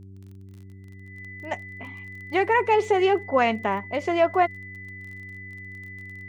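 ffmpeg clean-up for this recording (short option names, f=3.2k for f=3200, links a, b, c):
-af "adeclick=t=4,bandreject=f=96.4:t=h:w=4,bandreject=f=192.8:t=h:w=4,bandreject=f=289.2:t=h:w=4,bandreject=f=385.6:t=h:w=4,bandreject=f=2k:w=30"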